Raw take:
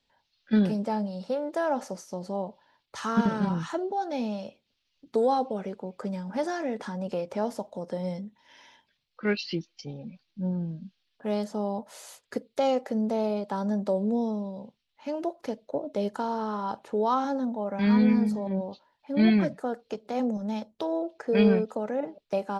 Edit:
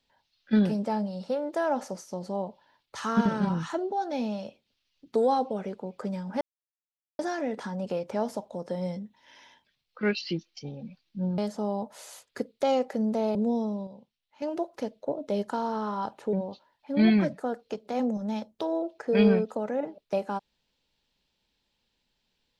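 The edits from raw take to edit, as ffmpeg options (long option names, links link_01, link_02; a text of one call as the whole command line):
ffmpeg -i in.wav -filter_complex "[0:a]asplit=7[link_01][link_02][link_03][link_04][link_05][link_06][link_07];[link_01]atrim=end=6.41,asetpts=PTS-STARTPTS,afade=type=out:start_time=6.406:duration=0.004:curve=hsin,apad=pad_dur=0.78[link_08];[link_02]atrim=start=6.41:end=10.602,asetpts=PTS-STARTPTS,afade=type=in:duration=0.004:curve=hsin[link_09];[link_03]atrim=start=11.338:end=13.312[link_10];[link_04]atrim=start=14.008:end=14.532[link_11];[link_05]atrim=start=14.528:end=15.082,asetpts=PTS-STARTPTS,volume=-7dB[link_12];[link_06]atrim=start=15.078:end=16.992[link_13];[link_07]atrim=start=18.528[link_14];[link_08][link_09]concat=n=2:v=0:a=1[link_15];[link_15][link_10]acrossfade=duration=0.004:curve1=hsin:curve2=hsin[link_16];[link_16][link_11]acrossfade=duration=0.004:curve1=hsin:curve2=hsin[link_17];[link_17][link_12]acrossfade=duration=0.004:curve1=hsin:curve2=hsin[link_18];[link_18][link_13]acrossfade=duration=0.004:curve1=hsin:curve2=hsin[link_19];[link_19][link_14]acrossfade=duration=0.004:curve1=hsin:curve2=hsin" out.wav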